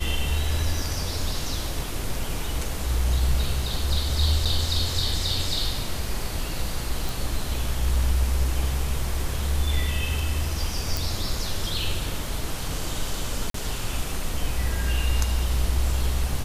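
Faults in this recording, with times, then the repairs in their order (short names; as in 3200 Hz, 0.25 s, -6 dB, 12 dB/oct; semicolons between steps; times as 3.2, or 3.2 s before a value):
4.45–4.46 gap 5.9 ms
7.09 pop
10.97 pop
13.5–13.54 gap 43 ms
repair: de-click; interpolate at 4.45, 5.9 ms; interpolate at 13.5, 43 ms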